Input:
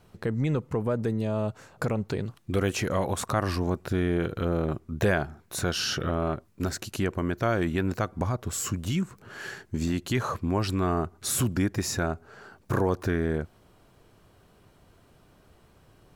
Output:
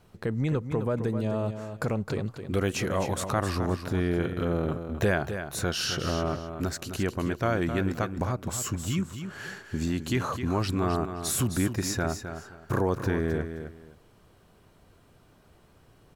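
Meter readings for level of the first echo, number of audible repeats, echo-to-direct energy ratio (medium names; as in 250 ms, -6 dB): -9.0 dB, 2, -9.0 dB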